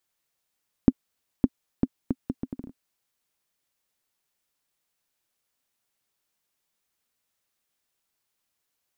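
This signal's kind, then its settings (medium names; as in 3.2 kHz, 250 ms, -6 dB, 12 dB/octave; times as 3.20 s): bouncing ball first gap 0.56 s, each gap 0.7, 259 Hz, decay 44 ms -3.5 dBFS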